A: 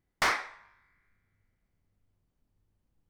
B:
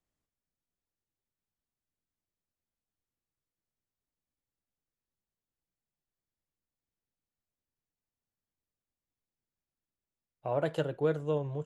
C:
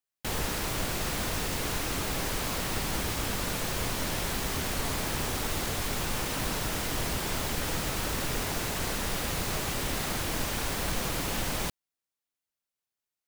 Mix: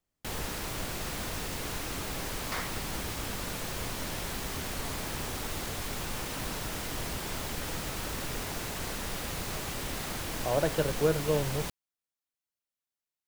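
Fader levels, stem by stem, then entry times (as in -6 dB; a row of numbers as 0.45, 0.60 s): -11.0, +2.5, -4.5 dB; 2.30, 0.00, 0.00 s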